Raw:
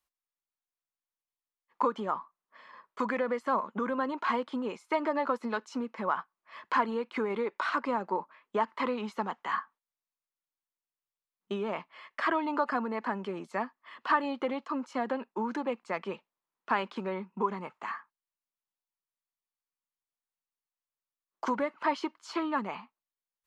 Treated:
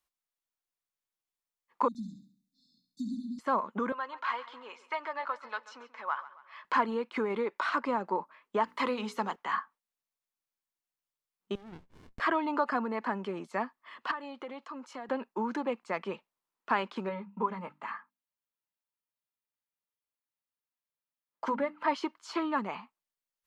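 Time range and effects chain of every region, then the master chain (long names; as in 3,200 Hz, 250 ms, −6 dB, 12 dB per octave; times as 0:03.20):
0:01.88–0:03.39: linear-phase brick-wall band-stop 300–3,500 Hz + flutter between parallel walls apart 11.8 metres, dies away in 0.54 s
0:03.92–0:06.65: high-pass filter 990 Hz + high-frequency loss of the air 93 metres + repeating echo 136 ms, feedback 45%, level −16.5 dB
0:08.64–0:09.36: high-shelf EQ 3,900 Hz +10 dB + mains-hum notches 60/120/180/240/300/360/420/480/540 Hz
0:11.55–0:12.20: downward compressor, threshold −43 dBFS + windowed peak hold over 65 samples
0:14.11–0:15.09: high-pass filter 320 Hz 6 dB per octave + downward compressor 2 to 1, threshold −44 dBFS
0:17.09–0:21.88: parametric band 6,500 Hz −8 dB 1 octave + mains-hum notches 50/100/150/200/250/300 Hz + notch comb filter 370 Hz
whole clip: no processing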